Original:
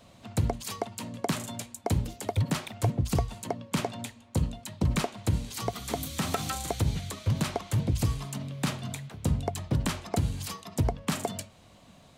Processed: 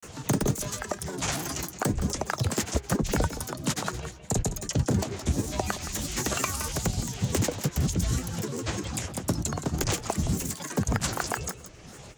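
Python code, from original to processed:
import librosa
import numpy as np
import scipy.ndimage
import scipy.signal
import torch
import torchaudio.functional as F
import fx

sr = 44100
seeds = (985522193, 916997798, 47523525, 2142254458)

p1 = fx.granulator(x, sr, seeds[0], grain_ms=100.0, per_s=20.0, spray_ms=100.0, spread_st=12)
p2 = fx.peak_eq(p1, sr, hz=5800.0, db=11.5, octaves=0.71)
p3 = p2 + fx.echo_single(p2, sr, ms=168, db=-13.5, dry=0)
p4 = fx.formant_shift(p3, sr, semitones=3)
p5 = fx.band_squash(p4, sr, depth_pct=40)
y = p5 * librosa.db_to_amplitude(2.0)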